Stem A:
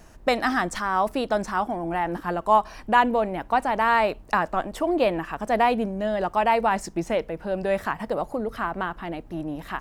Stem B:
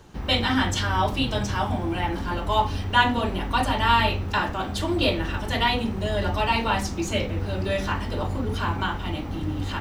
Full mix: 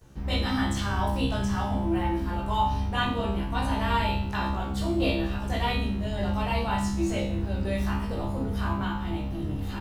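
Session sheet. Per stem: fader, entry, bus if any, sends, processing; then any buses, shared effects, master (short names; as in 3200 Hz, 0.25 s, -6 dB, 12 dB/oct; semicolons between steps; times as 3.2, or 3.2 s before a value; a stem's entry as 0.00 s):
-9.0 dB, 0.00 s, no send, high shelf 4600 Hz +12 dB; AGC gain up to 9 dB
+1.5 dB, 12 ms, no send, low shelf 230 Hz +10 dB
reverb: off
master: resonator 67 Hz, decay 0.59 s, harmonics all, mix 90%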